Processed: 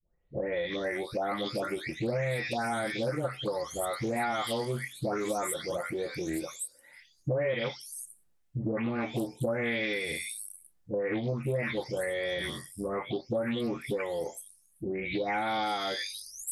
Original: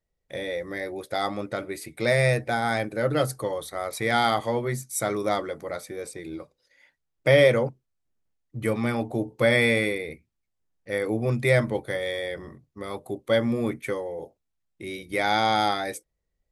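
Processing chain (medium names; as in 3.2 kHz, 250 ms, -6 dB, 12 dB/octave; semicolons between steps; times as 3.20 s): delay that grows with frequency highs late, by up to 541 ms; compression 5:1, threshold -36 dBFS, peak gain reduction 19 dB; loudspeaker Doppler distortion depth 0.25 ms; trim +6.5 dB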